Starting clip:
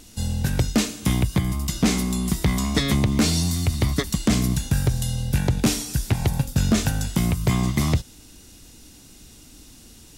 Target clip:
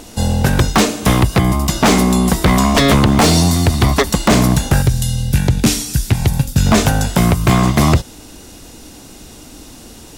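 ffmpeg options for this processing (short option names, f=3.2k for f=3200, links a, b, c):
-af "asetnsamples=n=441:p=0,asendcmd='4.82 equalizer g -3.5;6.66 equalizer g 9.5',equalizer=f=670:t=o:w=2.4:g=12,aeval=exprs='0.237*(abs(mod(val(0)/0.237+3,4)-2)-1)':c=same,volume=8dB"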